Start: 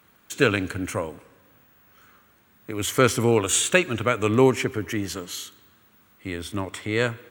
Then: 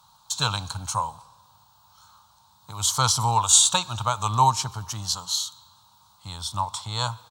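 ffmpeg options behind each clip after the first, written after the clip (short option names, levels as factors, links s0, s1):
-af "firequalizer=gain_entry='entry(140,0);entry(270,-21);entry(390,-24);entry(890,14);entry(1900,-22);entry(3900,12);entry(15000,-5)':delay=0.05:min_phase=1"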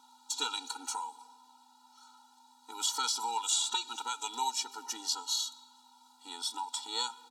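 -filter_complex "[0:a]acrossover=split=190|1900|5300[s0][s1][s2][s3];[s0]acompressor=threshold=0.01:ratio=4[s4];[s1]acompressor=threshold=0.0178:ratio=4[s5];[s2]acompressor=threshold=0.0398:ratio=4[s6];[s3]acompressor=threshold=0.02:ratio=4[s7];[s4][s5][s6][s7]amix=inputs=4:normalize=0,aeval=exprs='val(0)+0.00158*(sin(2*PI*50*n/s)+sin(2*PI*2*50*n/s)/2+sin(2*PI*3*50*n/s)/3+sin(2*PI*4*50*n/s)/4+sin(2*PI*5*50*n/s)/5)':c=same,afftfilt=real='re*eq(mod(floor(b*sr/1024/250),2),1)':imag='im*eq(mod(floor(b*sr/1024/250),2),1)':win_size=1024:overlap=0.75"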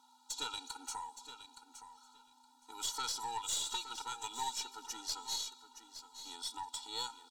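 -filter_complex "[0:a]aeval=exprs='(tanh(14.1*val(0)+0.35)-tanh(0.35))/14.1':c=same,asplit=2[s0][s1];[s1]aecho=0:1:868|1736:0.266|0.0426[s2];[s0][s2]amix=inputs=2:normalize=0,volume=0.596"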